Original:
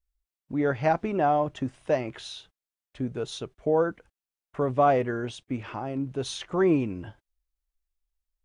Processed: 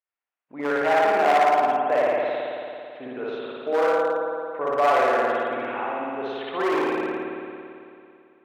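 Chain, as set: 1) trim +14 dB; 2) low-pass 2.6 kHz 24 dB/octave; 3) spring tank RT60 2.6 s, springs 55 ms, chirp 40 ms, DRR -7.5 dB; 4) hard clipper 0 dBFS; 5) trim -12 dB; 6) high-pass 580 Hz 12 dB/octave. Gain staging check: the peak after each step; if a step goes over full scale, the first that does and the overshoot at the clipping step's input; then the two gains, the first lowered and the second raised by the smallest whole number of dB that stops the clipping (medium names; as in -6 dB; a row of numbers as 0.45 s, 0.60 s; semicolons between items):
+3.5 dBFS, +3.0 dBFS, +10.0 dBFS, 0.0 dBFS, -12.0 dBFS, -7.5 dBFS; step 1, 10.0 dB; step 1 +4 dB, step 5 -2 dB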